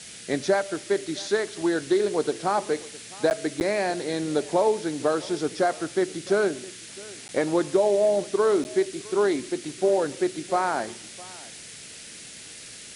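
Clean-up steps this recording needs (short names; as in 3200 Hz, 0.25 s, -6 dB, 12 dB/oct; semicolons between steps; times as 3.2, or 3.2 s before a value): interpolate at 3.3/3.6/7.28/8.64, 9.9 ms; noise print and reduce 27 dB; inverse comb 0.66 s -21.5 dB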